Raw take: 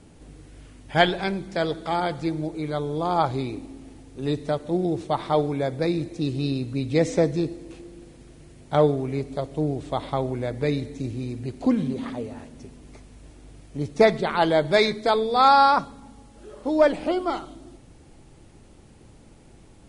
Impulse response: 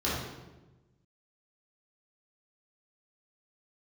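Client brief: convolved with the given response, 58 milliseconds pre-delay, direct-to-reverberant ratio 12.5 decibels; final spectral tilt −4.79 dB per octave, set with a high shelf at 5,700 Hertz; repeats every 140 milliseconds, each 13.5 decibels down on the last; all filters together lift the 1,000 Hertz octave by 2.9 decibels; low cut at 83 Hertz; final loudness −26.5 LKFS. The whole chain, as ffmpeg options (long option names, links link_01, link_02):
-filter_complex "[0:a]highpass=83,equalizer=frequency=1000:width_type=o:gain=4,highshelf=frequency=5700:gain=-4,aecho=1:1:140|280:0.211|0.0444,asplit=2[link_01][link_02];[1:a]atrim=start_sample=2205,adelay=58[link_03];[link_02][link_03]afir=irnorm=-1:irlink=0,volume=-22.5dB[link_04];[link_01][link_04]amix=inputs=2:normalize=0,volume=-4.5dB"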